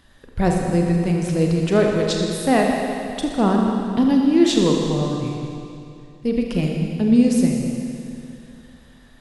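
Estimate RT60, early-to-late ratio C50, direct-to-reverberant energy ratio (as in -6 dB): 2.6 s, 1.5 dB, 0.5 dB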